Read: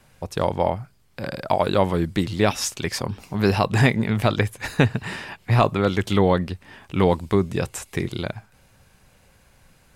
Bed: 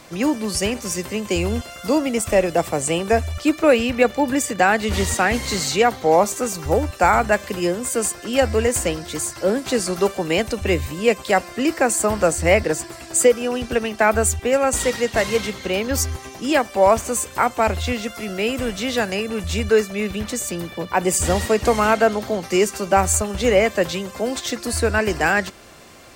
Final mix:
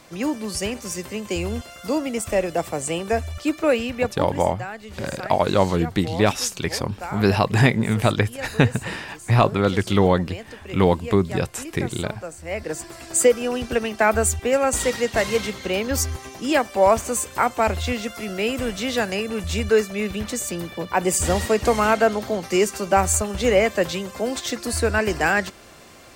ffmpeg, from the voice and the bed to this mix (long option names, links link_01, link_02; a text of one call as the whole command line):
ffmpeg -i stem1.wav -i stem2.wav -filter_complex "[0:a]adelay=3800,volume=1dB[link_01];[1:a]volume=11dB,afade=type=out:start_time=3.74:duration=0.73:silence=0.237137,afade=type=in:start_time=12.47:duration=0.58:silence=0.16788[link_02];[link_01][link_02]amix=inputs=2:normalize=0" out.wav